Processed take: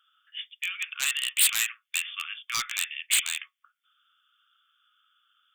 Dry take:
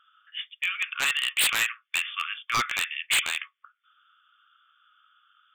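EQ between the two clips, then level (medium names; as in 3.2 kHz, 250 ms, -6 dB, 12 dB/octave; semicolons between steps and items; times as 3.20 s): tone controls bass -2 dB, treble +7 dB; amplifier tone stack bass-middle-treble 5-5-5; +4.0 dB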